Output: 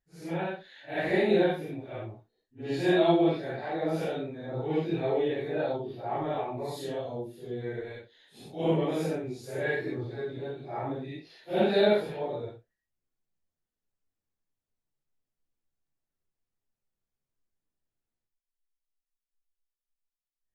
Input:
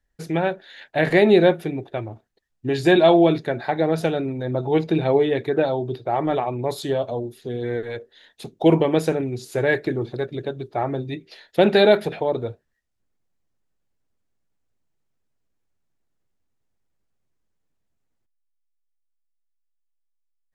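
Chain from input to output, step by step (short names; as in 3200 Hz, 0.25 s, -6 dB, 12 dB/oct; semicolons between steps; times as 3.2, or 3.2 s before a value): phase scrambler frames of 0.2 s; gain -9 dB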